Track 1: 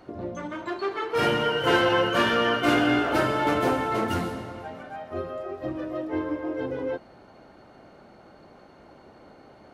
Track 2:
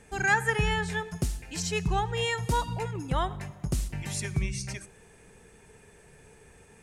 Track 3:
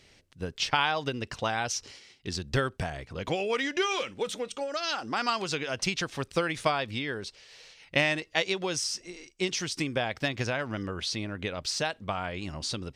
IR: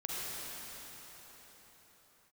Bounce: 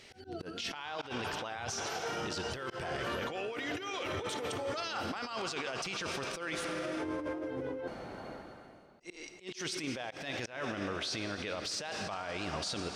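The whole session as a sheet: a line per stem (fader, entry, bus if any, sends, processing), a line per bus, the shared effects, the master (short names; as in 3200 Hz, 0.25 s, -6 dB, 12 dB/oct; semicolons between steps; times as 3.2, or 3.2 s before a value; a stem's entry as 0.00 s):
+2.0 dB, 0.90 s, no send, auto duck -18 dB, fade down 0.70 s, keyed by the third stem
-16.5 dB, 0.00 s, no send, spectrum mirrored in octaves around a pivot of 770 Hz; LPF 7100 Hz
0.0 dB, 0.00 s, muted 6.65–9, send -12 dB, tone controls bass -9 dB, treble -2 dB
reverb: on, pre-delay 38 ms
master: negative-ratio compressor -35 dBFS, ratio -1; auto swell 0.173 s; limiter -27.5 dBFS, peak gain reduction 9 dB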